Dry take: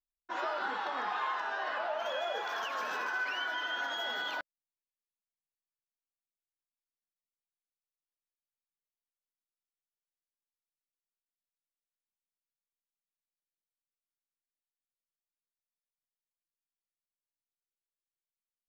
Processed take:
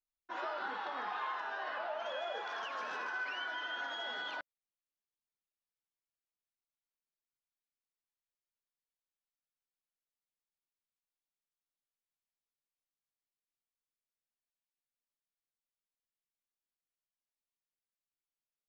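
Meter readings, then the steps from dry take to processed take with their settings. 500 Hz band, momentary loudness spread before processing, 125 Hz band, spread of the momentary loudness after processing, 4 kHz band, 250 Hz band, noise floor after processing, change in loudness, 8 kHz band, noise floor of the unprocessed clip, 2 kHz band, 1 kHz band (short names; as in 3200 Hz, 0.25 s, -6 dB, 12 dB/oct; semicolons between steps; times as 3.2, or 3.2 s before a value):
-4.5 dB, 3 LU, n/a, 3 LU, -5.0 dB, -4.5 dB, under -85 dBFS, -4.5 dB, -9.0 dB, under -85 dBFS, -4.5 dB, -4.5 dB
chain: LPF 5500 Hz 12 dB/oct; gain -4.5 dB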